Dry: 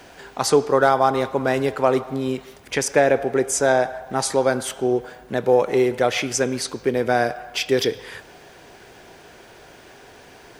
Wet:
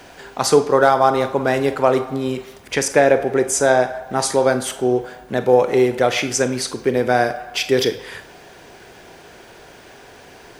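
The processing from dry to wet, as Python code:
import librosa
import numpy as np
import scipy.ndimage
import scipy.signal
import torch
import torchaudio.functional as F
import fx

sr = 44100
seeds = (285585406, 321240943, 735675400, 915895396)

y = fx.rev_schroeder(x, sr, rt60_s=0.32, comb_ms=32, drr_db=11.5)
y = y * 10.0 ** (2.5 / 20.0)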